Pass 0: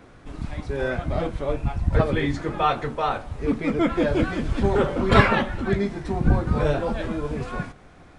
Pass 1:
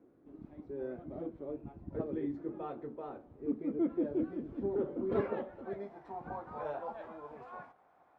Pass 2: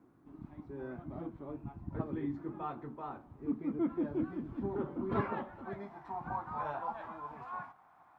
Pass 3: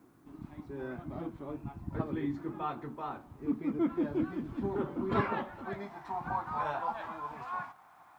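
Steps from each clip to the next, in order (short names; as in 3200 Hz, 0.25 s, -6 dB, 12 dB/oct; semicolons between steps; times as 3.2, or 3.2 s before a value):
band-pass sweep 330 Hz -> 840 Hz, 5.05–6.11; gain -8 dB
graphic EQ 125/500/1000 Hz +4/-12/+8 dB; gain +2.5 dB
high shelf 2500 Hz +12 dB; gain +2.5 dB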